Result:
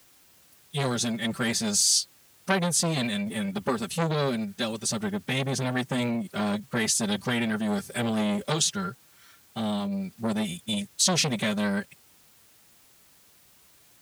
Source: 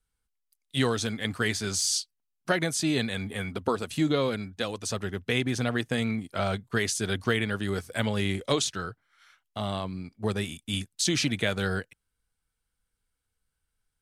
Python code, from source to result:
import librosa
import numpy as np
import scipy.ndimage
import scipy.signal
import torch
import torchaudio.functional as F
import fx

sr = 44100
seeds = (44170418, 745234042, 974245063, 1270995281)

p1 = fx.high_shelf(x, sr, hz=4400.0, db=7.0)
p2 = p1 + 0.79 * np.pad(p1, (int(5.4 * sr / 1000.0), 0))[:len(p1)]
p3 = fx.quant_dither(p2, sr, seeds[0], bits=8, dither='triangular')
p4 = p2 + F.gain(torch.from_numpy(p3), -4.0).numpy()
p5 = scipy.signal.sosfilt(scipy.signal.butter(2, 71.0, 'highpass', fs=sr, output='sos'), p4)
p6 = fx.low_shelf(p5, sr, hz=220.0, db=10.0)
p7 = fx.pitch_keep_formants(p6, sr, semitones=1.0)
p8 = fx.transformer_sat(p7, sr, knee_hz=1600.0)
y = F.gain(torch.from_numpy(p8), -5.5).numpy()